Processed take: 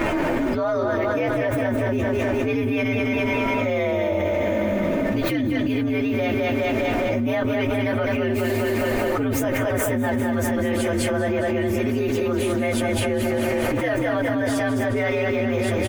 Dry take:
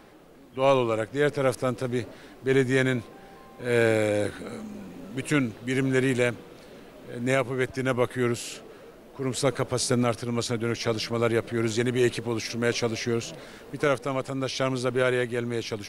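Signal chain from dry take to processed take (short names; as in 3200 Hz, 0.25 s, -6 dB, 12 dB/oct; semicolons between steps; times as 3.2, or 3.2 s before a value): inharmonic rescaling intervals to 118%; resonant high shelf 3000 Hz -9 dB, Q 1.5; comb 3.3 ms, depth 49%; split-band echo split 350 Hz, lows 0.154 s, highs 0.205 s, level -6.5 dB; fast leveller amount 100%; gain -6 dB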